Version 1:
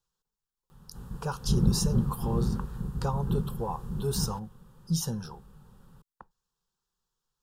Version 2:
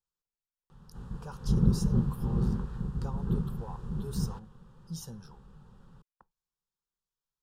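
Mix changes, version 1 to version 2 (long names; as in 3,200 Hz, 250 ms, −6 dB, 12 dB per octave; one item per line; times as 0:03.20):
speech −11.5 dB
background: add high-frequency loss of the air 73 metres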